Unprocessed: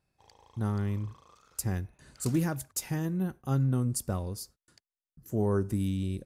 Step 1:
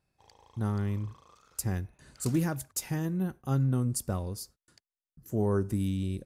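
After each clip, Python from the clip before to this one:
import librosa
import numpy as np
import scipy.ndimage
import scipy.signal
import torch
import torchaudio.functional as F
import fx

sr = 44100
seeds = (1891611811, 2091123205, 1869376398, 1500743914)

y = x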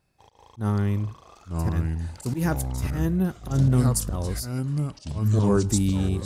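y = fx.auto_swell(x, sr, attack_ms=122.0)
y = fx.echo_pitch(y, sr, ms=739, semitones=-4, count=3, db_per_echo=-3.0)
y = y * librosa.db_to_amplitude(7.0)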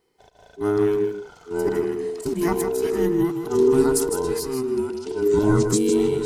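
y = fx.band_invert(x, sr, width_hz=500)
y = y + 10.0 ** (-7.5 / 20.0) * np.pad(y, (int(157 * sr / 1000.0), 0))[:len(y)]
y = y * librosa.db_to_amplitude(2.0)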